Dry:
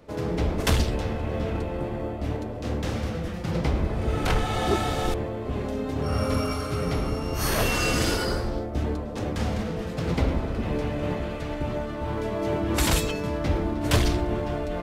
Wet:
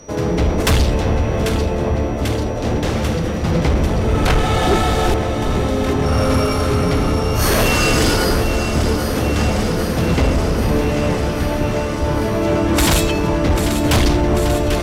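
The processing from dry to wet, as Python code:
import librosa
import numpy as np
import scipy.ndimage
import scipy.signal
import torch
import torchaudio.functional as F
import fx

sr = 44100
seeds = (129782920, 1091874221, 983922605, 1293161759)

y = x + 10.0 ** (-53.0 / 20.0) * np.sin(2.0 * np.pi * 5800.0 * np.arange(len(x)) / sr)
y = fx.echo_alternate(y, sr, ms=396, hz=1100.0, feedback_pct=87, wet_db=-8.0)
y = fx.fold_sine(y, sr, drive_db=6, ceiling_db=-9.0)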